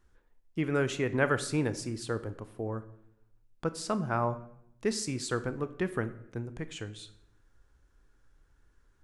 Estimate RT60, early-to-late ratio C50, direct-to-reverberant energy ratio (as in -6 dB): 0.75 s, 15.0 dB, 12.0 dB